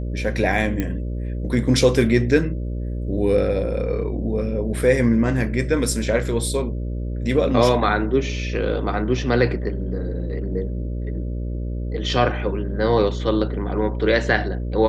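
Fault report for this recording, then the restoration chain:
buzz 60 Hz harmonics 10 -26 dBFS
0.80 s: pop -11 dBFS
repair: de-click; de-hum 60 Hz, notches 10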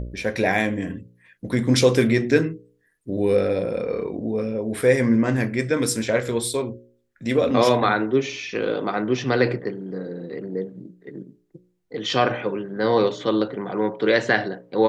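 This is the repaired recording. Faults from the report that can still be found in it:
0.80 s: pop

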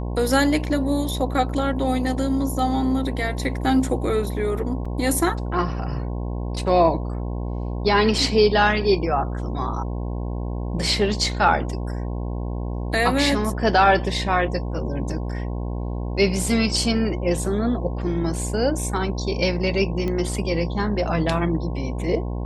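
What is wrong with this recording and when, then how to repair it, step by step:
buzz 60 Hz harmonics 18 -27 dBFS
4.85 s: dropout 4.9 ms
20.08 s: pop -16 dBFS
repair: de-click; de-hum 60 Hz, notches 18; interpolate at 4.85 s, 4.9 ms

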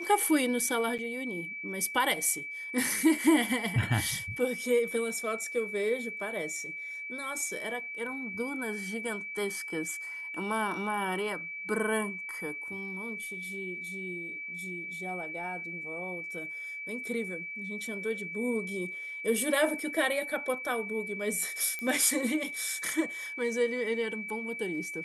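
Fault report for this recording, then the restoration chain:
whine 2.3 kHz -37 dBFS
0.98–0.99 s: dropout 7.5 ms
21.79 s: pop -22 dBFS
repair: de-click; band-stop 2.3 kHz, Q 30; interpolate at 0.98 s, 7.5 ms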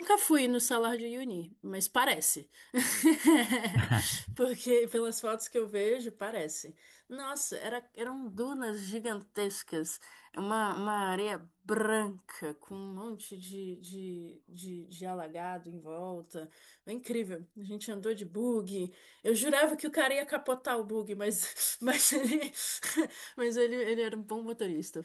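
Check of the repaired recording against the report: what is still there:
nothing left

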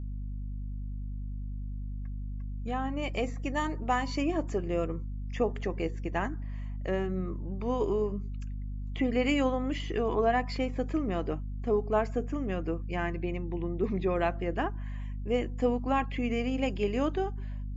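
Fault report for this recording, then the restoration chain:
hum 50 Hz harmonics 5 -36 dBFS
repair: de-hum 50 Hz, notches 5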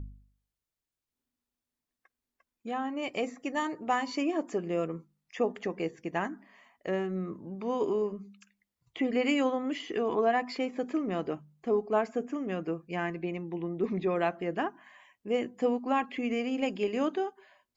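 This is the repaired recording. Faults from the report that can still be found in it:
nothing left

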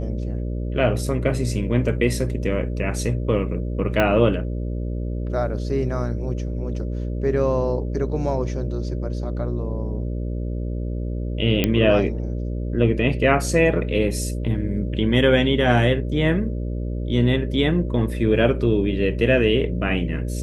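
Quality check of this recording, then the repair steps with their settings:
buzz 60 Hz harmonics 10 -26 dBFS
4.00 s: pop -7 dBFS
11.64 s: pop -5 dBFS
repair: de-click; de-hum 60 Hz, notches 10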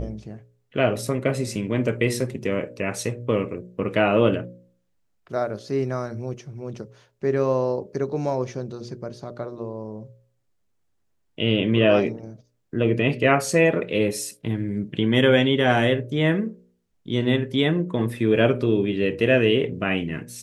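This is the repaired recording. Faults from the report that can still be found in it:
4.00 s: pop

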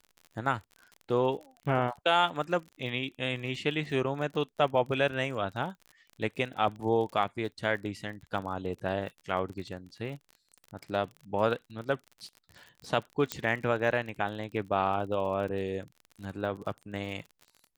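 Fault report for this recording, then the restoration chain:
crackle 40 per s -39 dBFS
13.32 s: pop -13 dBFS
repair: de-click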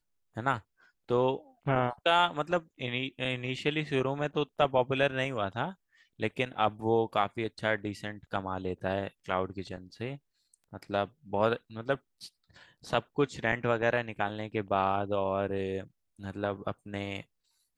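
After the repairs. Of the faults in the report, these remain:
nothing left

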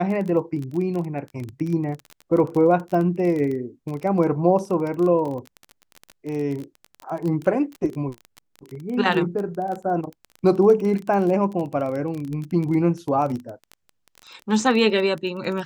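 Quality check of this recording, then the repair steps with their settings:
crackle 24 per s -27 dBFS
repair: de-click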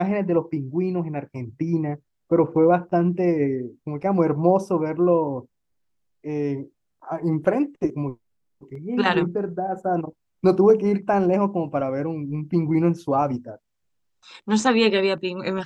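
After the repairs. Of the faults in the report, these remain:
nothing left

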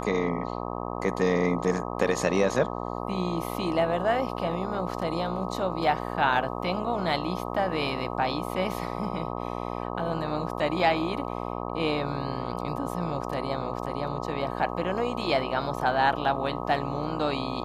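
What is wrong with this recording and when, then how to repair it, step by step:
buzz 60 Hz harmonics 21 -33 dBFS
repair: de-hum 60 Hz, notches 21

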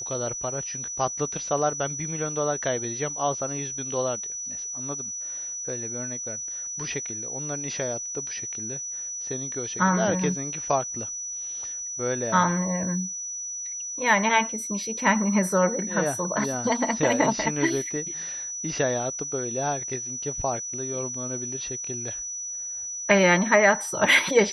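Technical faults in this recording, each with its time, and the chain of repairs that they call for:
whine 5.9 kHz -31 dBFS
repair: band-stop 5.9 kHz, Q 30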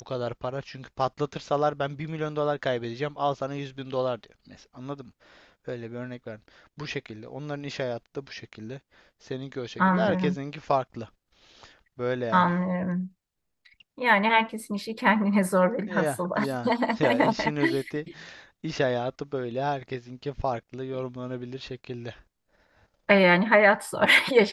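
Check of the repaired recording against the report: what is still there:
nothing left

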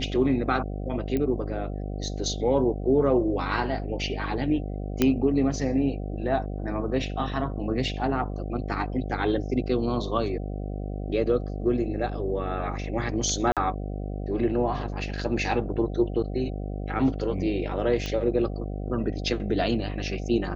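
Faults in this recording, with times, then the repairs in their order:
buzz 50 Hz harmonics 15 -32 dBFS
1.17 s: pop -16 dBFS
5.02 s: pop -7 dBFS
13.52–13.57 s: dropout 47 ms
18.06 s: pop -17 dBFS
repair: de-click; de-hum 50 Hz, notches 15; interpolate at 13.52 s, 47 ms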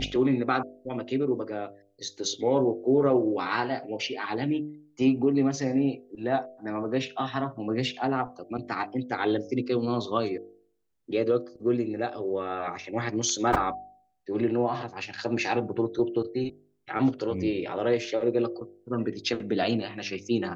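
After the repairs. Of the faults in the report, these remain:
5.02 s: pop

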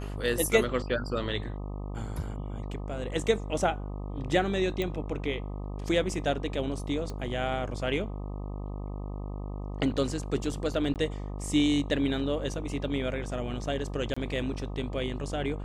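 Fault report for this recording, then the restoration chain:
buzz 50 Hz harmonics 25 -36 dBFS
4.82 s: pop -18 dBFS
7.10 s: pop -25 dBFS
10.94–10.96 s: dropout 18 ms
14.14–14.16 s: dropout 25 ms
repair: de-click; de-hum 50 Hz, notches 25; interpolate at 10.94 s, 18 ms; interpolate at 14.14 s, 25 ms

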